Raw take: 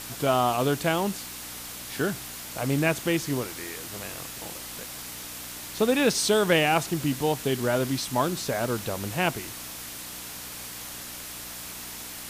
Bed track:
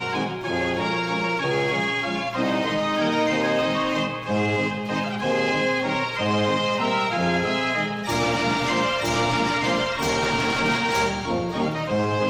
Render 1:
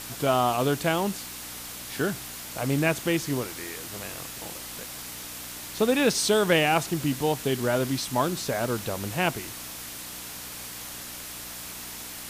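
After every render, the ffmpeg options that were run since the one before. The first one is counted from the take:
-af anull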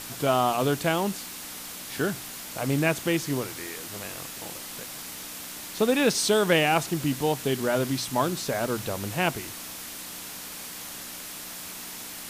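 -af "bandreject=f=60:t=h:w=4,bandreject=f=120:t=h:w=4"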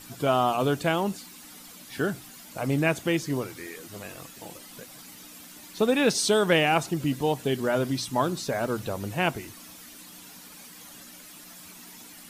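-af "afftdn=nr=11:nf=-39"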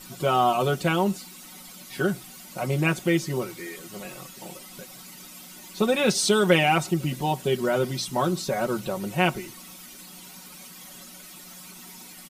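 -af "bandreject=f=1.7k:w=13,aecho=1:1:5.4:0.8"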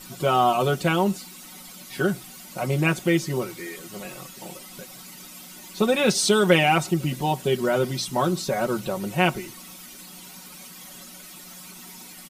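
-af "volume=1.5dB"

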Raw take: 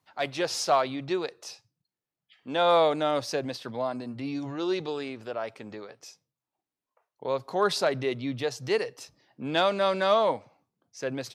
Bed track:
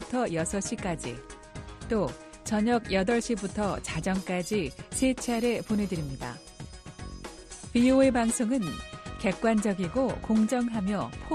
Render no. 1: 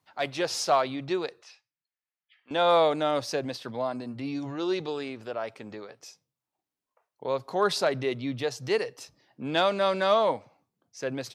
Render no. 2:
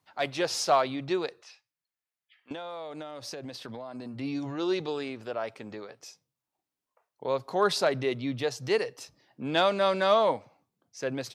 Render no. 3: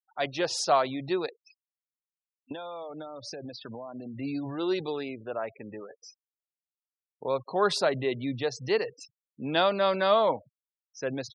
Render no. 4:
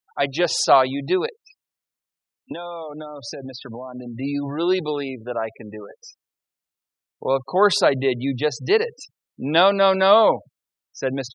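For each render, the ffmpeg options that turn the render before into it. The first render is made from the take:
-filter_complex "[0:a]asettb=1/sr,asplit=3[a][b][c];[a]atrim=end=1.424[d];[b]atrim=start=1.42:end=2.51,asetpts=PTS-STARTPTS,afade=t=in:d=0.004:c=qsin,afade=t=out:st=1.086:d=0.004:c=qsin,bandpass=f=2k:t=q:w=1.4[e];[c]atrim=start=2.506[f];[d][e]acrossfade=d=0.004:c1=hsin:c2=qsin[g];[g][f]acrossfade=d=0.004:c1=qsin:c2=hsin"
-filter_complex "[0:a]asettb=1/sr,asplit=3[a][b][c];[a]atrim=end=2.524[d];[b]atrim=start=2.52:end=4.19,asetpts=PTS-STARTPTS,afade=t=in:d=0.004:c=qsin,afade=t=out:st=1.666:d=0.004:c=qsin,acompressor=threshold=-35dB:ratio=20:attack=3.2:release=140:knee=1:detection=peak[e];[c]atrim=start=4.186[f];[d][e]acrossfade=d=0.004:c1=hsin:c2=qsin[g];[g][f]acrossfade=d=0.004:c1=qsin:c2=hsin"
-af "afftfilt=real='re*gte(hypot(re,im),0.01)':imag='im*gte(hypot(re,im),0.01)':win_size=1024:overlap=0.75,bandreject=f=2.2k:w=27"
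-af "volume=8dB"

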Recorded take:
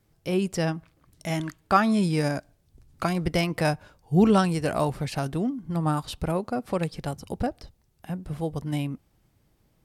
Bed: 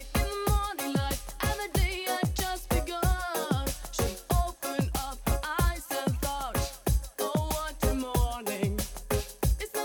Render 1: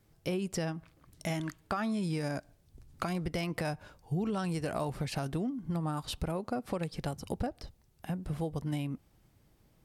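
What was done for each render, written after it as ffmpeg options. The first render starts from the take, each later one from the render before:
-af "alimiter=limit=-16.5dB:level=0:latency=1:release=92,acompressor=threshold=-31dB:ratio=4"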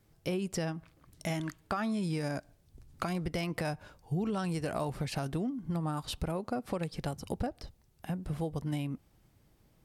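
-af anull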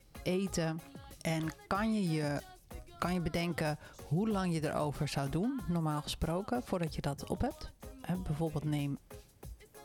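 -filter_complex "[1:a]volume=-22.5dB[a];[0:a][a]amix=inputs=2:normalize=0"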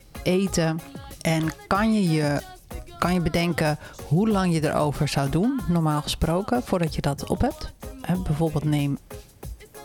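-af "volume=11.5dB"

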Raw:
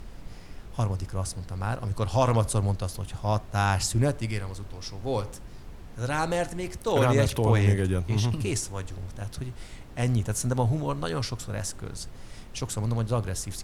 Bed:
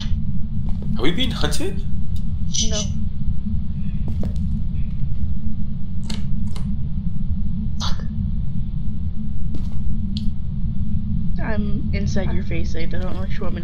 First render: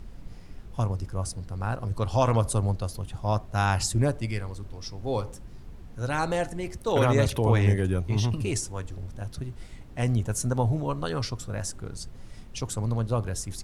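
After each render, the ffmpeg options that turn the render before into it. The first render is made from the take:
-af "afftdn=nr=6:nf=-44"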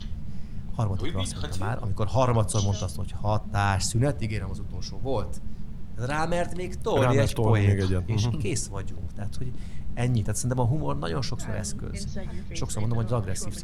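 -filter_complex "[1:a]volume=-13.5dB[a];[0:a][a]amix=inputs=2:normalize=0"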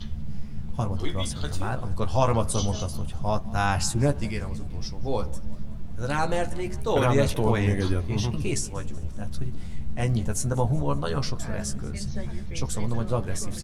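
-filter_complex "[0:a]asplit=2[a][b];[b]adelay=14,volume=-6.5dB[c];[a][c]amix=inputs=2:normalize=0,asplit=5[d][e][f][g][h];[e]adelay=188,afreqshift=47,volume=-22dB[i];[f]adelay=376,afreqshift=94,volume=-26.6dB[j];[g]adelay=564,afreqshift=141,volume=-31.2dB[k];[h]adelay=752,afreqshift=188,volume=-35.7dB[l];[d][i][j][k][l]amix=inputs=5:normalize=0"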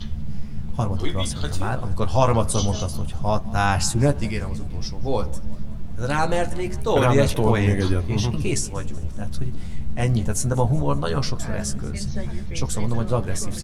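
-af "volume=4dB"

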